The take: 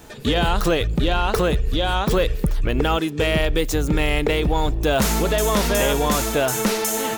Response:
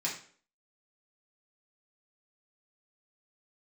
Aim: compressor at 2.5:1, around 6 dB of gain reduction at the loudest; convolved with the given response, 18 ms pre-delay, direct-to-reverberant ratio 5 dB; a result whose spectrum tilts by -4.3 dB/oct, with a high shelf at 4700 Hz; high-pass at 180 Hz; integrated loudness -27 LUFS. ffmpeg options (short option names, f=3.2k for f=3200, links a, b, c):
-filter_complex "[0:a]highpass=180,highshelf=f=4.7k:g=-7.5,acompressor=threshold=-25dB:ratio=2.5,asplit=2[a][b];[1:a]atrim=start_sample=2205,adelay=18[c];[b][c]afir=irnorm=-1:irlink=0,volume=-10dB[d];[a][d]amix=inputs=2:normalize=0,volume=-0.5dB"